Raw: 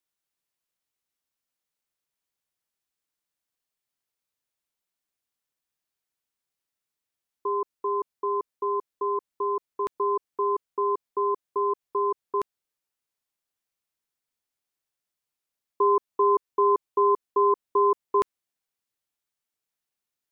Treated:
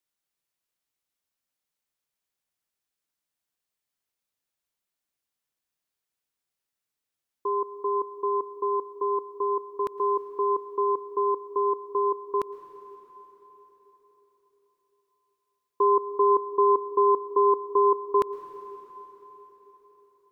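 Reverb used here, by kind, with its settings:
dense smooth reverb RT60 4.4 s, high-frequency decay 0.9×, pre-delay 100 ms, DRR 12 dB

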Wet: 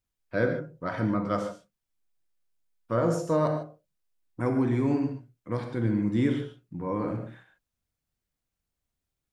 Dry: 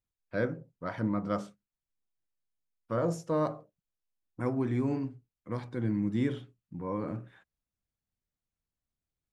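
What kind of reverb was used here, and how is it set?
reverb whose tail is shaped and stops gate 170 ms flat, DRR 4.5 dB
level +4 dB

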